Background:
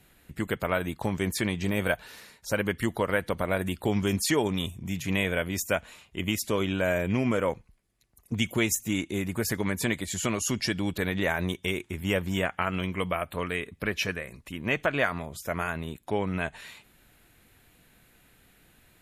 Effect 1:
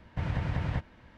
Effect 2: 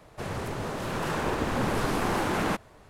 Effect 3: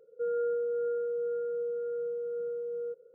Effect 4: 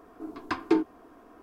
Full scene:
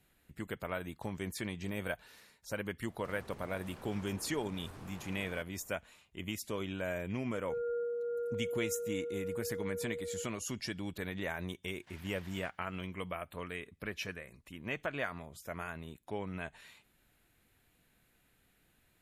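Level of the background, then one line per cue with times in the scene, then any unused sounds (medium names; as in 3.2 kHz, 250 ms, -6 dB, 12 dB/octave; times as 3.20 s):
background -11 dB
2.86 s: add 2 -12 dB + compression, threshold -37 dBFS
7.30 s: add 3 -5.5 dB
11.70 s: add 1 -2.5 dB + differentiator
not used: 4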